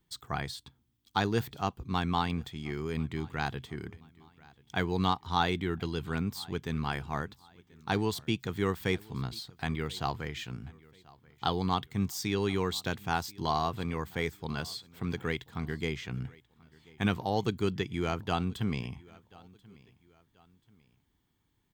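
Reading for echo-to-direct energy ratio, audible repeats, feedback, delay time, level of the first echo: -23.5 dB, 2, 39%, 1035 ms, -24.0 dB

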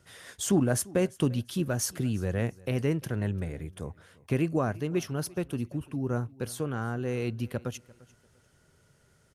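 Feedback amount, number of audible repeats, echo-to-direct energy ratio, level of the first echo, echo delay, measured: 26%, 2, -22.0 dB, -22.5 dB, 346 ms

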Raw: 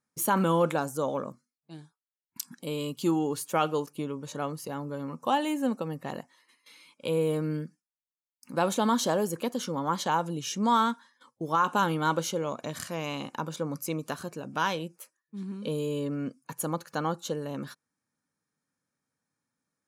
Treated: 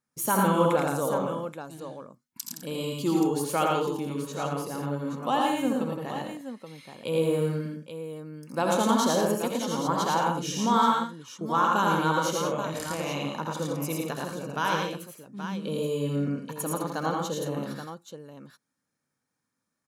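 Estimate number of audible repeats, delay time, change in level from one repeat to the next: 5, 68 ms, no regular repeats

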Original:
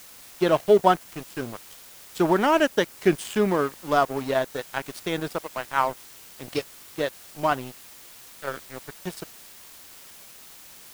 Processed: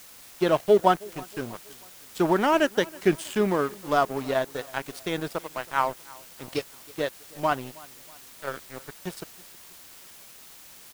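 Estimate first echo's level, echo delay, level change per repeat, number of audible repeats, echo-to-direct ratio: -23.0 dB, 320 ms, -6.5 dB, 2, -22.0 dB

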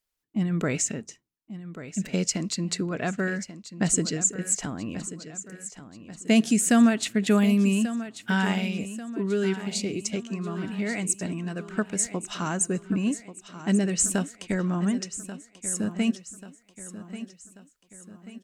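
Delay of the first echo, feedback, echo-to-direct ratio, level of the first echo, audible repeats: 1137 ms, 48%, -12.0 dB, -13.0 dB, 4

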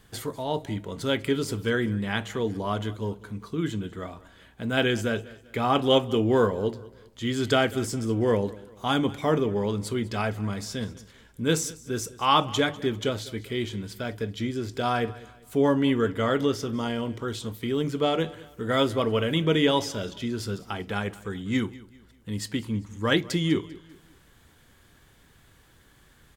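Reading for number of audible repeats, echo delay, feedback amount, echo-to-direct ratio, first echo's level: 2, 197 ms, 38%, -19.5 dB, -20.0 dB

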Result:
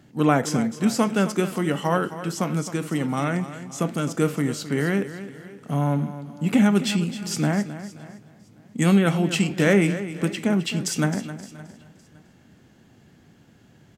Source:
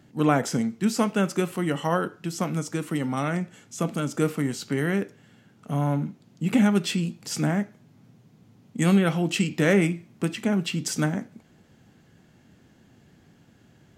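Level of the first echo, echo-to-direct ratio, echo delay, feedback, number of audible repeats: -13.0 dB, -12.0 dB, 263 ms, no regular repeats, 6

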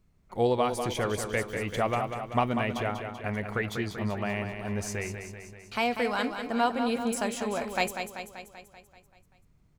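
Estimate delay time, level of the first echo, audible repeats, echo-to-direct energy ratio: 193 ms, -7.5 dB, 7, -5.5 dB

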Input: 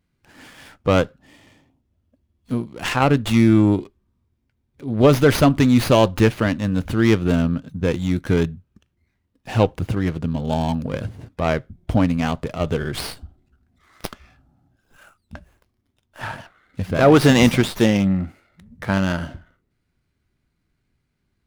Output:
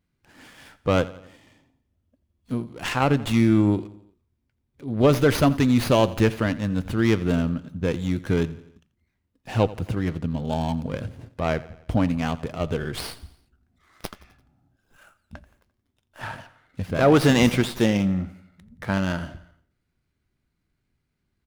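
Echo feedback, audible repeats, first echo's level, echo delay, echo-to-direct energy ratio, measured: 52%, 3, -18.5 dB, 86 ms, -17.0 dB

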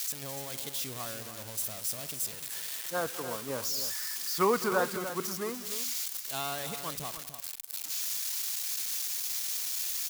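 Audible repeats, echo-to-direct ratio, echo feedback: 2, -9.5 dB, no regular repeats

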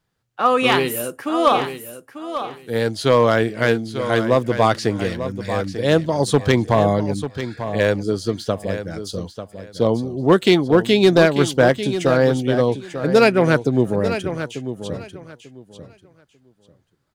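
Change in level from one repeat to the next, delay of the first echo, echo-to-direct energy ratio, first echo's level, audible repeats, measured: -14.0 dB, 893 ms, -10.5 dB, -10.5 dB, 2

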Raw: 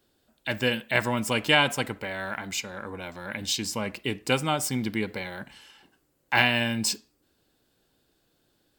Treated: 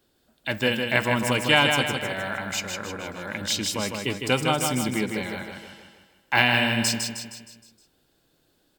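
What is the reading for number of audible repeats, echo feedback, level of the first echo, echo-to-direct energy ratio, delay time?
5, 49%, -5.0 dB, -4.0 dB, 156 ms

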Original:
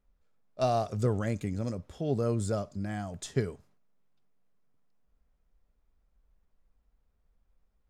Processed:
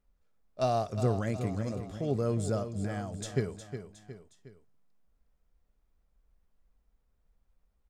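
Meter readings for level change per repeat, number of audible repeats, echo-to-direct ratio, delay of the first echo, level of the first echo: -6.5 dB, 3, -9.0 dB, 362 ms, -10.0 dB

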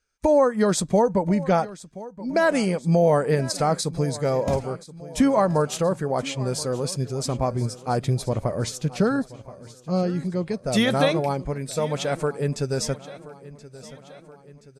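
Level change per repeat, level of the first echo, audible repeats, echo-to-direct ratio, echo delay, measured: -5.0 dB, -18.0 dB, 4, -16.5 dB, 1026 ms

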